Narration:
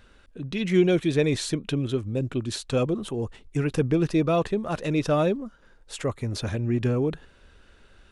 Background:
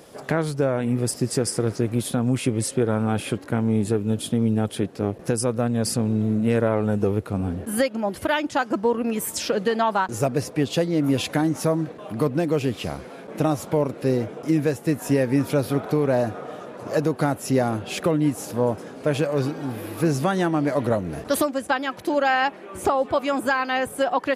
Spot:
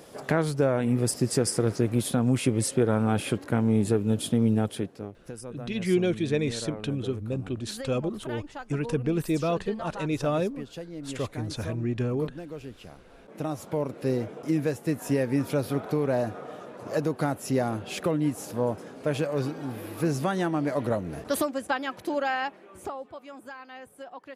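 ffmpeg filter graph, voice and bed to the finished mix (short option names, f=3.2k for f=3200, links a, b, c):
-filter_complex "[0:a]adelay=5150,volume=-4dB[a];[1:a]volume=10.5dB,afade=t=out:st=4.53:d=0.58:silence=0.16788,afade=t=in:st=13:d=1.09:silence=0.251189,afade=t=out:st=21.94:d=1.2:silence=0.16788[b];[a][b]amix=inputs=2:normalize=0"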